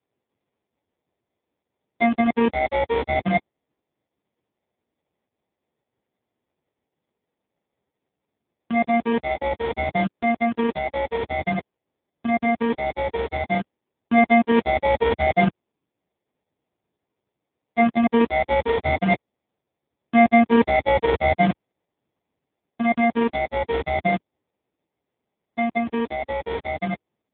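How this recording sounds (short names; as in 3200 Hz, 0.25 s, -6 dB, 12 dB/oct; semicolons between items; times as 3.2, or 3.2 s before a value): aliases and images of a low sample rate 1400 Hz, jitter 0%; AMR-NB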